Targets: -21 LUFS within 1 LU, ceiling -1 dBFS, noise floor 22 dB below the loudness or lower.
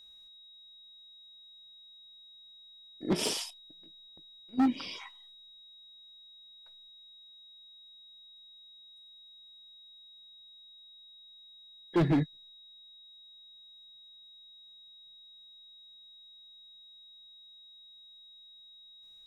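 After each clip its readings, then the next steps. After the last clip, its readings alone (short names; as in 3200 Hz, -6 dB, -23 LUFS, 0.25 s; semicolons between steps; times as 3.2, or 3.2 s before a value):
clipped 0.5%; flat tops at -21.5 dBFS; steady tone 3800 Hz; tone level -52 dBFS; loudness -31.5 LUFS; peak -21.5 dBFS; loudness target -21.0 LUFS
-> clip repair -21.5 dBFS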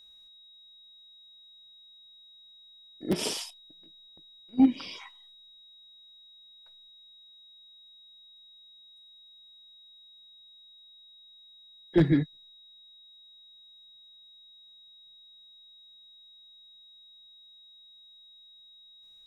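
clipped 0.0%; steady tone 3800 Hz; tone level -52 dBFS
-> notch 3800 Hz, Q 30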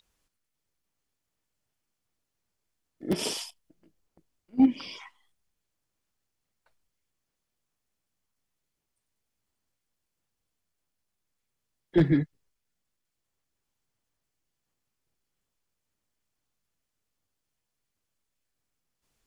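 steady tone none; loudness -26.5 LUFS; peak -12.5 dBFS; loudness target -21.0 LUFS
-> gain +5.5 dB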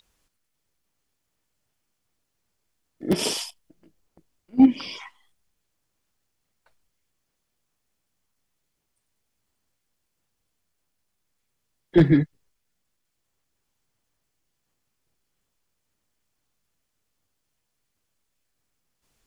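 loudness -21.5 LUFS; peak -7.0 dBFS; noise floor -78 dBFS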